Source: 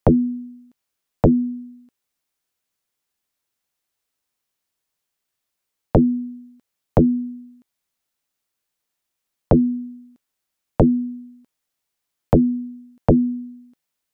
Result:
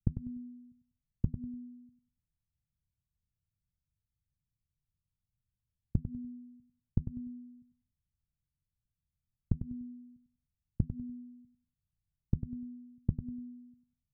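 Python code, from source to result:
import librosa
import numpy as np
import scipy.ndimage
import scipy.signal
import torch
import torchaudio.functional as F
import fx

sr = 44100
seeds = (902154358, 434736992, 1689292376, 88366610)

p1 = fx.law_mismatch(x, sr, coded='mu')
p2 = scipy.signal.sosfilt(scipy.signal.cheby2(4, 80, 800.0, 'lowpass', fs=sr, output='sos'), p1)
p3 = fx.gate_flip(p2, sr, shuts_db=-20.0, range_db=-24)
p4 = p3 + fx.echo_feedback(p3, sr, ms=98, feedback_pct=26, wet_db=-10.0, dry=0)
y = p4 * 10.0 ** (4.0 / 20.0)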